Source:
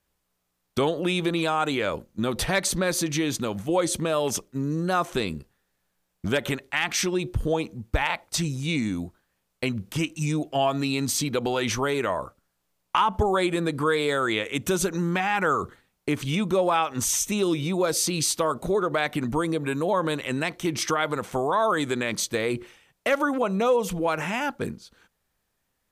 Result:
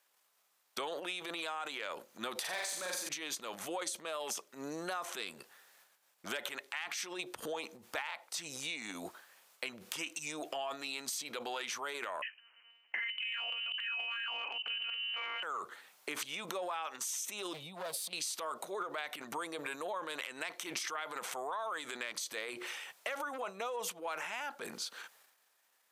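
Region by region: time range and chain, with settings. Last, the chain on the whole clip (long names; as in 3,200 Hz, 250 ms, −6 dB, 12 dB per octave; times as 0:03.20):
0:02.40–0:03.09: hard clipping −18 dBFS + flutter between parallel walls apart 7.5 metres, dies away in 0.74 s
0:12.22–0:15.43: one-pitch LPC vocoder at 8 kHz 230 Hz + voice inversion scrambler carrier 3,000 Hz
0:17.53–0:18.13: drawn EQ curve 180 Hz 0 dB, 380 Hz −19 dB, 680 Hz −6 dB, 1,400 Hz −24 dB, 3,800 Hz −11 dB, 6,000 Hz −25 dB, 9,900 Hz −11 dB + compressor whose output falls as the input rises −33 dBFS, ratio −0.5 + gain into a clipping stage and back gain 33 dB
whole clip: transient designer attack −6 dB, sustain +10 dB; high-pass filter 710 Hz 12 dB per octave; downward compressor 8 to 1, threshold −41 dBFS; level +4 dB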